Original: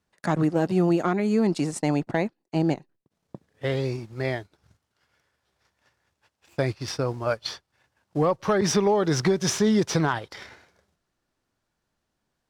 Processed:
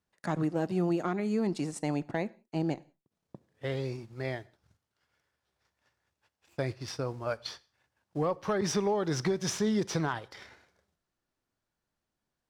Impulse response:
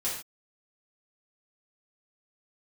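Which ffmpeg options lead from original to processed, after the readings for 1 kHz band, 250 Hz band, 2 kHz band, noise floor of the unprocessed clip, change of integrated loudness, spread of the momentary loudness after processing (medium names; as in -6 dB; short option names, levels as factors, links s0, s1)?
-7.5 dB, -7.5 dB, -7.5 dB, -80 dBFS, -7.5 dB, 12 LU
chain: -filter_complex "[0:a]asplit=2[s0][s1];[1:a]atrim=start_sample=2205,adelay=29[s2];[s1][s2]afir=irnorm=-1:irlink=0,volume=0.0473[s3];[s0][s3]amix=inputs=2:normalize=0,volume=0.422"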